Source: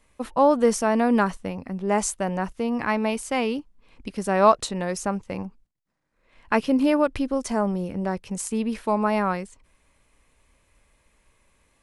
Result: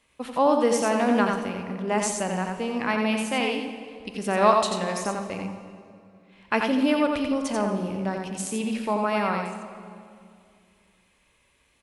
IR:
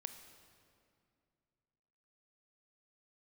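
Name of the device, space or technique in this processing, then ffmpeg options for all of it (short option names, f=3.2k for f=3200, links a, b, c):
PA in a hall: -filter_complex "[0:a]highpass=f=110:p=1,equalizer=f=3.1k:t=o:w=1:g=7,aecho=1:1:88:0.596[a];[1:a]atrim=start_sample=2205[b];[a][b]afir=irnorm=-1:irlink=0,volume=1dB"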